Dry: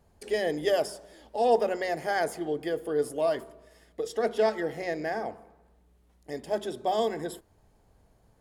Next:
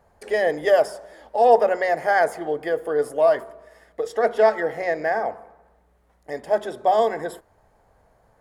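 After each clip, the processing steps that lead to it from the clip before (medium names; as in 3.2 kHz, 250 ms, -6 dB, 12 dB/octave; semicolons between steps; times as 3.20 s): high-order bell 1 kHz +9.5 dB 2.4 oct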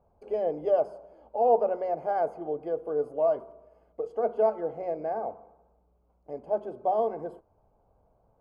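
boxcar filter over 24 samples; trim -5.5 dB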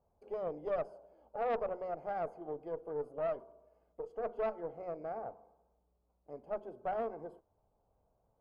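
valve stage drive 20 dB, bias 0.5; trim -7.5 dB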